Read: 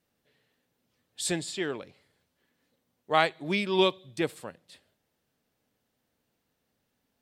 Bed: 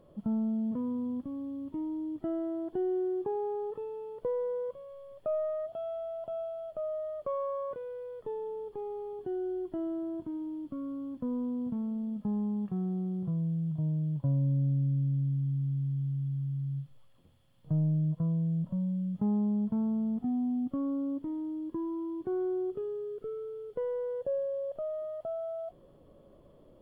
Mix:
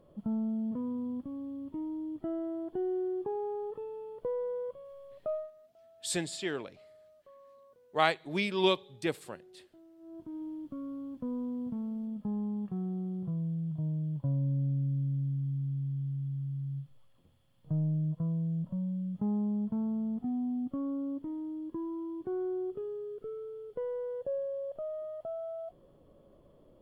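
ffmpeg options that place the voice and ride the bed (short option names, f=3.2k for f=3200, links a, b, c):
-filter_complex "[0:a]adelay=4850,volume=-3dB[a];[1:a]volume=18.5dB,afade=t=out:st=5.3:d=0.21:silence=0.0891251,afade=t=in:st=9.98:d=0.45:silence=0.0944061[b];[a][b]amix=inputs=2:normalize=0"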